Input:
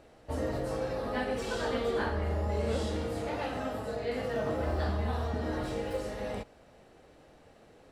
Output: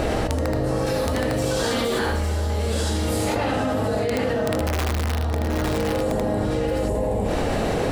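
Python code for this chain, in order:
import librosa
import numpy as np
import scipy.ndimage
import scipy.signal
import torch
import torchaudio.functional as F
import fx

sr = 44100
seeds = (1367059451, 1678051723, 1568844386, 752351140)

y = fx.pre_emphasis(x, sr, coefficient=0.8, at=(0.78, 3.36))
y = fx.spec_box(y, sr, start_s=6.03, length_s=1.22, low_hz=1100.0, high_hz=6600.0, gain_db=-12)
y = fx.low_shelf(y, sr, hz=230.0, db=5.0)
y = (np.mod(10.0 ** (20.5 / 20.0) * y + 1.0, 2.0) - 1.0) / 10.0 ** (20.5 / 20.0)
y = fx.echo_multitap(y, sr, ms=(77, 771, 855), db=(-4.5, -10.0, -10.0))
y = fx.env_flatten(y, sr, amount_pct=100)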